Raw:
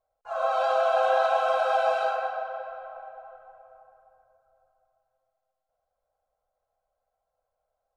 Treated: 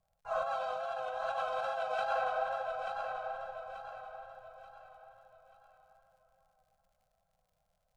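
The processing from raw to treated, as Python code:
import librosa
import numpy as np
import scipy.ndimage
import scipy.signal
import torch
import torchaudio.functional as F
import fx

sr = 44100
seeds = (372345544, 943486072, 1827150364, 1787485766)

p1 = fx.vibrato(x, sr, rate_hz=2.5, depth_cents=43.0)
p2 = fx.over_compress(p1, sr, threshold_db=-29.0, ratio=-1.0)
p3 = fx.dmg_crackle(p2, sr, seeds[0], per_s=79.0, level_db=-59.0)
p4 = fx.low_shelf_res(p3, sr, hz=230.0, db=9.0, q=3.0)
p5 = p4 + fx.echo_feedback(p4, sr, ms=884, feedback_pct=37, wet_db=-6, dry=0)
y = p5 * librosa.db_to_amplitude(-5.5)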